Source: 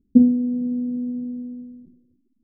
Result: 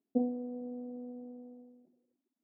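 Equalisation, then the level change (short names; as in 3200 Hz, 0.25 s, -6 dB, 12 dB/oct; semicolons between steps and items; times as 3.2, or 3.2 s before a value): resonant high-pass 680 Hz, resonance Q 3.8; air absorption 420 m; -1.5 dB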